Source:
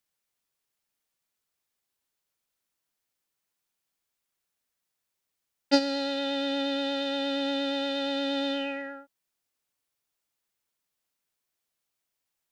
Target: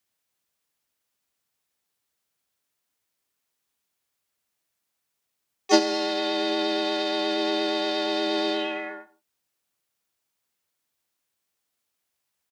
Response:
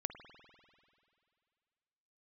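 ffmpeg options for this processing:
-filter_complex "[0:a]afreqshift=45,asplit=3[a][b][c];[b]asetrate=29433,aresample=44100,atempo=1.49831,volume=-14dB[d];[c]asetrate=55563,aresample=44100,atempo=0.793701,volume=-5dB[e];[a][d][e]amix=inputs=3:normalize=0,asplit=2[f][g];[1:a]atrim=start_sample=2205,afade=t=out:st=0.2:d=0.01,atrim=end_sample=9261[h];[g][h]afir=irnorm=-1:irlink=0,volume=-2dB[i];[f][i]amix=inputs=2:normalize=0,volume=-2dB"

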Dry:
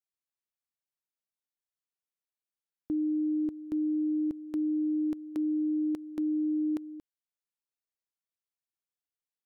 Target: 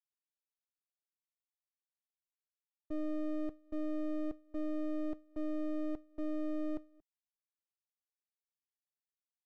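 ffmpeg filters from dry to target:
-filter_complex "[0:a]asuperpass=centerf=340:order=12:qfactor=0.6,asplit=2[a][b];[b]acompressor=threshold=-40dB:ratio=6,volume=2dB[c];[a][c]amix=inputs=2:normalize=0,agate=range=-33dB:threshold=-25dB:ratio=3:detection=peak,aeval=exprs='max(val(0),0)':c=same,volume=-4.5dB"

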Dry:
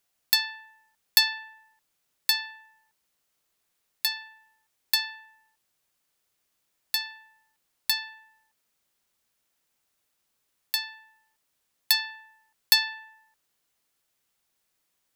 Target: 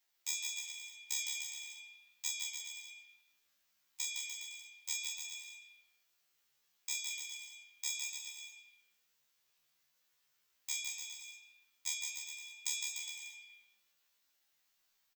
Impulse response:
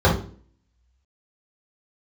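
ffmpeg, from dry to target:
-af "afftfilt=real='re':imag='-im':win_size=2048:overlap=0.75,highpass=f=920:p=1,equalizer=f=6.1k:w=2.9:g=-12.5,acompressor=threshold=-40dB:ratio=10,aeval=exprs='val(0)*sin(2*PI*300*n/s)':c=same,flanger=delay=3.9:depth=7.3:regen=89:speed=0.15:shape=sinusoidal,asetrate=72056,aresample=44100,atempo=0.612027,flanger=delay=3.5:depth=5.2:regen=-59:speed=1.7:shape=sinusoidal,aecho=1:1:160|296|411.6|509.9|593.4:0.631|0.398|0.251|0.158|0.1,volume=18dB"

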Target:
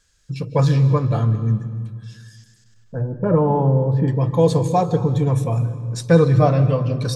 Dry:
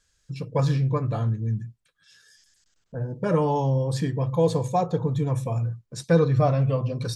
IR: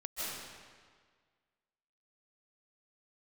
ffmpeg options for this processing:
-filter_complex "[0:a]asettb=1/sr,asplit=3[a][b][c];[a]atrim=end=3.014[d];[b]atrim=start=3.01:end=4.08,asetpts=PTS-STARTPTS,afade=t=in:d=0.004:c=qsin,afade=t=out:st=1.066:d=0.004:c=qsin,lowpass=1.1k[e];[c]atrim=start=4.076[f];[d][e]acrossfade=d=0.004:c1=hsin:c2=qsin[g];[g][f]acrossfade=d=0.004:c1=qsin:c2=hsin,asplit=2[h][i];[i]equalizer=f=670:w=3.5:g=-8.5[j];[1:a]atrim=start_sample=2205,lowshelf=f=480:g=8[k];[j][k]afir=irnorm=-1:irlink=0,volume=-14.5dB[l];[h][l]amix=inputs=2:normalize=0,volume=4.5dB"

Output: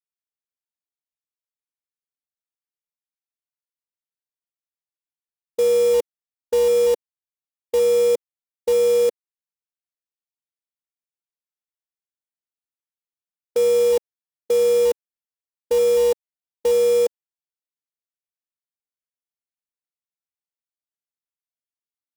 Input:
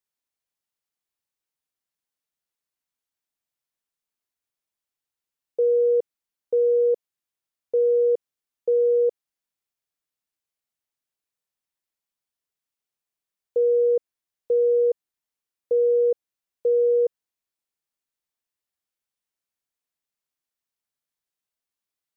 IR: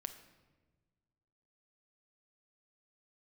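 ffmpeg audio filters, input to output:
-af "afwtdn=0.0447,acrusher=bits=3:mode=log:mix=0:aa=0.000001,volume=2.5dB"

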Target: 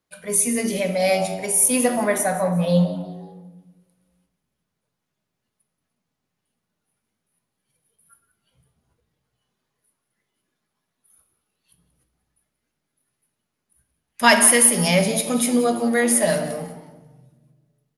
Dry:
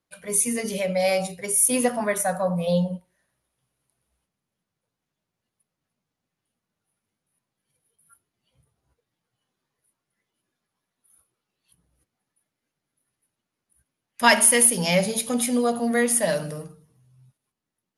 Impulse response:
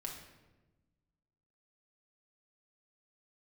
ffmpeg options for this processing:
-filter_complex "[0:a]asplit=4[a][b][c][d];[b]adelay=180,afreqshift=100,volume=-16.5dB[e];[c]adelay=360,afreqshift=200,volume=-24.9dB[f];[d]adelay=540,afreqshift=300,volume=-33.3dB[g];[a][e][f][g]amix=inputs=4:normalize=0,asplit=2[h][i];[1:a]atrim=start_sample=2205[j];[i][j]afir=irnorm=-1:irlink=0,volume=1.5dB[k];[h][k]amix=inputs=2:normalize=0,volume=-2.5dB"

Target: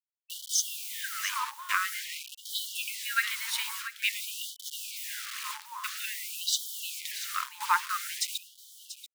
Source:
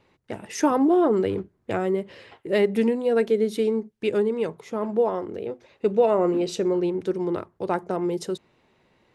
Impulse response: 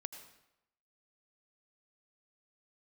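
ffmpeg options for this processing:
-filter_complex "[0:a]bandreject=f=129.4:t=h:w=4,bandreject=f=258.8:t=h:w=4,bandreject=f=388.2:t=h:w=4,bandreject=f=517.6:t=h:w=4,bandreject=f=647:t=h:w=4,bandreject=f=776.4:t=h:w=4,bandreject=f=905.8:t=h:w=4,acrusher=bits=6:mix=0:aa=0.000001,asplit=2[a][b];[b]aecho=0:1:686:0.237[c];[a][c]amix=inputs=2:normalize=0,afftfilt=real='re*gte(b*sr/1024,850*pow(3000/850,0.5+0.5*sin(2*PI*0.49*pts/sr)))':imag='im*gte(b*sr/1024,850*pow(3000/850,0.5+0.5*sin(2*PI*0.49*pts/sr)))':win_size=1024:overlap=0.75,volume=8dB"

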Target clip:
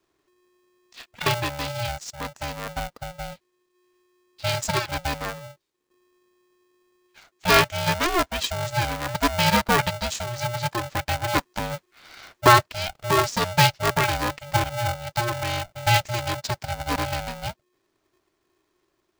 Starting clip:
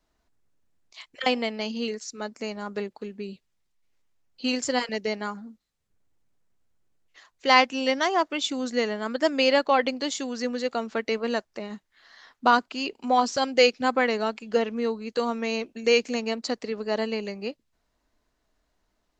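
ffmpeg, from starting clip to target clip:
-filter_complex "[0:a]asettb=1/sr,asplit=3[a][b][c];[a]atrim=end=11.354[d];[b]atrim=start=11.35:end=12.63,asetpts=PTS-STARTPTS,afade=t=in:d=0.004:c=qsin,afade=t=out:st=1.276:d=0.004:c=qsin,acontrast=37[e];[c]atrim=start=12.626[f];[d][e]acrossfade=d=0.004:c1=hsin:c2=qsin[g];[g][f]acrossfade=d=0.004:c1=qsin:c2=hsin,aeval=exprs='val(0)*sgn(sin(2*PI*360*n/s))':c=same,volume=1dB"

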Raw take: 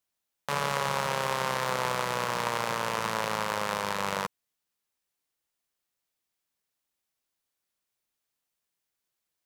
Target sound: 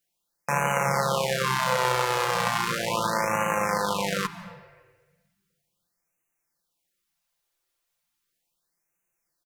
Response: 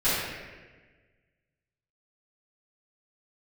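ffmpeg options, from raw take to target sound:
-filter_complex "[0:a]aecho=1:1:5.8:0.65,asplit=2[a][b];[1:a]atrim=start_sample=2205,lowshelf=f=210:g=11,adelay=136[c];[b][c]afir=irnorm=-1:irlink=0,volume=-29.5dB[d];[a][d]amix=inputs=2:normalize=0,afftfilt=real='re*(1-between(b*sr/1024,200*pow(4200/200,0.5+0.5*sin(2*PI*0.36*pts/sr))/1.41,200*pow(4200/200,0.5+0.5*sin(2*PI*0.36*pts/sr))*1.41))':imag='im*(1-between(b*sr/1024,200*pow(4200/200,0.5+0.5*sin(2*PI*0.36*pts/sr))/1.41,200*pow(4200/200,0.5+0.5*sin(2*PI*0.36*pts/sr))*1.41))':win_size=1024:overlap=0.75,volume=3.5dB"

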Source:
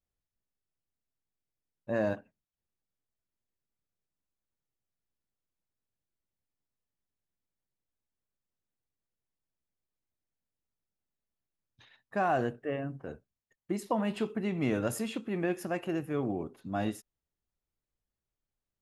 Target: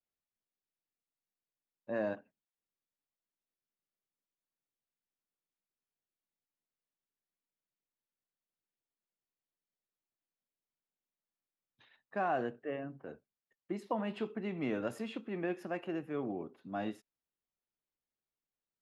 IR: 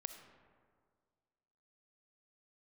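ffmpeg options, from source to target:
-filter_complex "[0:a]acrossover=split=160 4500:gain=0.2 1 0.178[a][b][c];[a][b][c]amix=inputs=3:normalize=0,volume=-4.5dB"

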